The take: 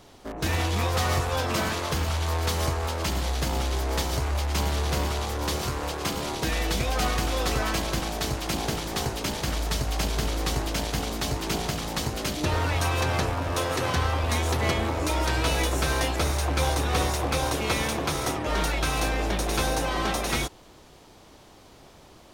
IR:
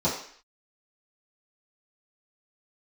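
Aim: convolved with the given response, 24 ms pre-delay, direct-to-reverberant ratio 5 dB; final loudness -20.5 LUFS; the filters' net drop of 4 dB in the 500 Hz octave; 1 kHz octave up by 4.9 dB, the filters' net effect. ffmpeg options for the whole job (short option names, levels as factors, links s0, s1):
-filter_complex "[0:a]equalizer=f=500:t=o:g=-8,equalizer=f=1000:t=o:g=8.5,asplit=2[s0][s1];[1:a]atrim=start_sample=2205,adelay=24[s2];[s1][s2]afir=irnorm=-1:irlink=0,volume=0.133[s3];[s0][s3]amix=inputs=2:normalize=0,volume=1.5"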